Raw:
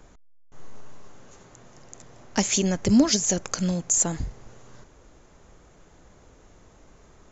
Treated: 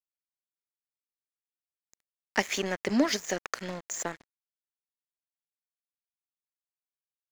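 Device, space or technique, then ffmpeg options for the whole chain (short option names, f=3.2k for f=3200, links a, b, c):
pocket radio on a weak battery: -af "highpass=350,lowpass=3.9k,aeval=exprs='sgn(val(0))*max(abs(val(0))-0.0112,0)':c=same,equalizer=f=1.9k:t=o:w=0.5:g=8.5"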